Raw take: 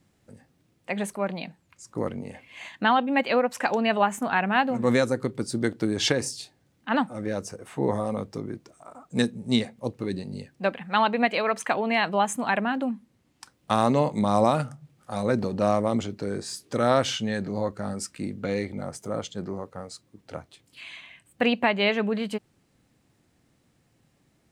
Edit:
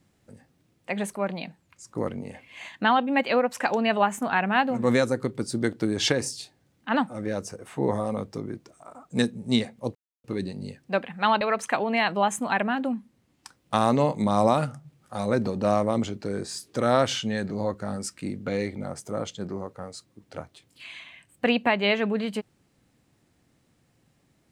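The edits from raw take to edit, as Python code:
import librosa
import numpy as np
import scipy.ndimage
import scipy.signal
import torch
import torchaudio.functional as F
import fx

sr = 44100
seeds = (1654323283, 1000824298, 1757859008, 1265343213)

y = fx.edit(x, sr, fx.insert_silence(at_s=9.95, length_s=0.29),
    fx.cut(start_s=11.12, length_s=0.26), tone=tone)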